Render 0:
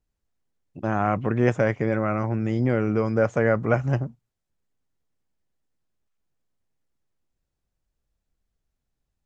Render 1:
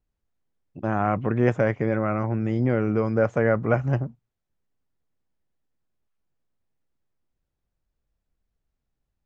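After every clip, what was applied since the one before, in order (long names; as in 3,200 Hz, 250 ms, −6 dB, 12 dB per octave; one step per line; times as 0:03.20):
low-pass filter 3,000 Hz 6 dB per octave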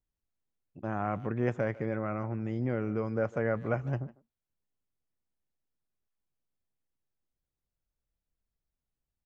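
far-end echo of a speakerphone 150 ms, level −19 dB
level −9 dB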